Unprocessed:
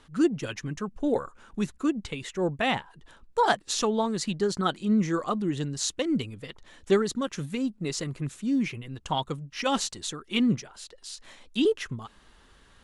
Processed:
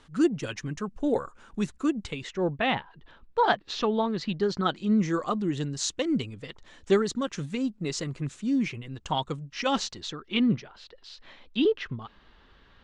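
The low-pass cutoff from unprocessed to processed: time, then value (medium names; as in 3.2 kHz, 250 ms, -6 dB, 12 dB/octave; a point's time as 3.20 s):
low-pass 24 dB/octave
2.05 s 9.4 kHz
2.53 s 4.2 kHz
4.16 s 4.2 kHz
5.20 s 7.9 kHz
9.38 s 7.9 kHz
10.42 s 4.3 kHz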